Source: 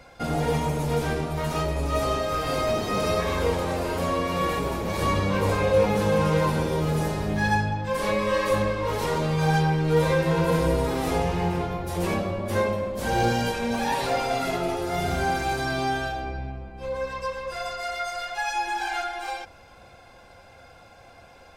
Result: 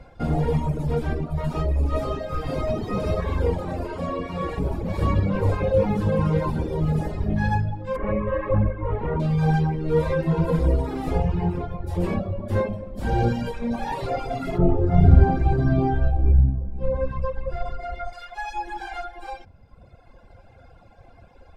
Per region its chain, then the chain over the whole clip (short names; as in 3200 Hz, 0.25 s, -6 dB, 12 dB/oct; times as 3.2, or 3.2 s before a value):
3.87–4.58 LPF 9800 Hz + low shelf 200 Hz -5 dB
7.96–9.2 LPF 2300 Hz 24 dB/oct + bell 74 Hz +6.5 dB 0.91 oct
14.58–18.13 LPF 2200 Hz 6 dB/oct + low shelf 400 Hz +12 dB
whole clip: notch 6100 Hz, Q 14; reverb removal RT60 1.5 s; tilt -3 dB/oct; gain -2 dB